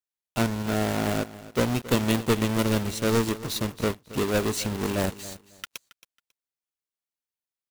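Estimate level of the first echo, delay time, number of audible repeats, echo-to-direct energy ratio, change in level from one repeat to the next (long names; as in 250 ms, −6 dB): −17.0 dB, 273 ms, 2, −17.0 dB, −14.0 dB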